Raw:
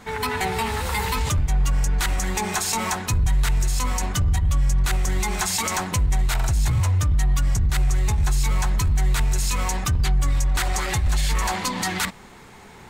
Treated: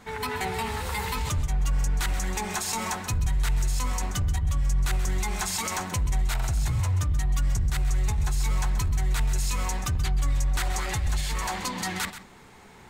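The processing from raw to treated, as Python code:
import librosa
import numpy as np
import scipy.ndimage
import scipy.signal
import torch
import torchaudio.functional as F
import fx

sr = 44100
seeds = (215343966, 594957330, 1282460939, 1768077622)

y = x + 10.0 ** (-12.5 / 20.0) * np.pad(x, (int(131 * sr / 1000.0), 0))[:len(x)]
y = F.gain(torch.from_numpy(y), -5.5).numpy()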